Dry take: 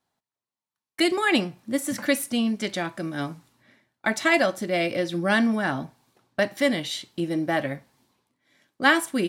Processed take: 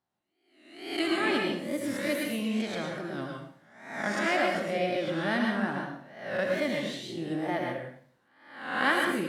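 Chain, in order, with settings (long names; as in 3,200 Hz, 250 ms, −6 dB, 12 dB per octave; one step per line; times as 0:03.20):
peak hold with a rise ahead of every peak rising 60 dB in 0.76 s
tape wow and flutter 120 cents
high-shelf EQ 3,700 Hz −8.5 dB
dense smooth reverb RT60 0.55 s, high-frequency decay 1×, pre-delay 95 ms, DRR 1 dB
level −9 dB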